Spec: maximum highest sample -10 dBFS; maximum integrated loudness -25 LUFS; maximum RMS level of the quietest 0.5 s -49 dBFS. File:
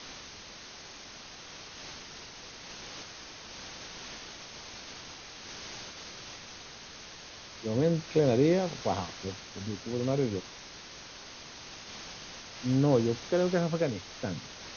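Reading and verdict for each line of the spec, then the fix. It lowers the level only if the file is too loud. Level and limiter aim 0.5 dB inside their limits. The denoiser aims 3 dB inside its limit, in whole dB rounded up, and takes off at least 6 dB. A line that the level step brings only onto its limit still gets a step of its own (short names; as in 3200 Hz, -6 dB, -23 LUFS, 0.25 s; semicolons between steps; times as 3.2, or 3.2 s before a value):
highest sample -13.0 dBFS: OK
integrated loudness -32.5 LUFS: OK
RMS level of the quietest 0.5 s -47 dBFS: fail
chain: denoiser 6 dB, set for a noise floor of -47 dBFS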